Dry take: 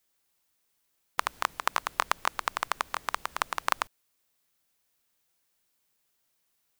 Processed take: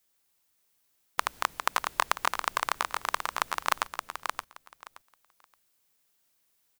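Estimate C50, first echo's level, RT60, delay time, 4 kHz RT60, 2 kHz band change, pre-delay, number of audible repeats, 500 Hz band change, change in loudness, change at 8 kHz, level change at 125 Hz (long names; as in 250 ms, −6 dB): no reverb audible, −6.0 dB, no reverb audible, 573 ms, no reverb audible, +1.5 dB, no reverb audible, 2, +1.0 dB, +0.5 dB, +2.5 dB, +1.0 dB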